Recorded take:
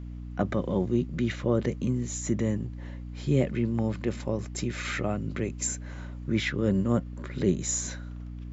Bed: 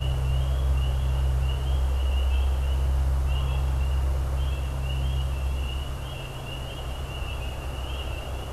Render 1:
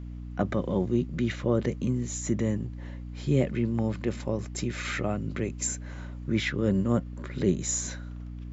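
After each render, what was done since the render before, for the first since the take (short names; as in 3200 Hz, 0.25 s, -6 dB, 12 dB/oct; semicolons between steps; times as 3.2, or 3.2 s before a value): nothing audible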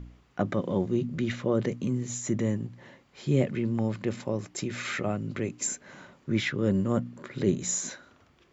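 de-hum 60 Hz, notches 5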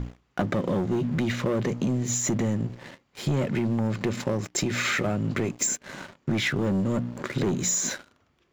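sample leveller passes 3; compressor, threshold -23 dBFS, peak gain reduction 8 dB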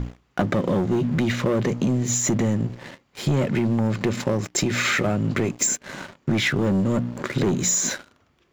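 gain +4 dB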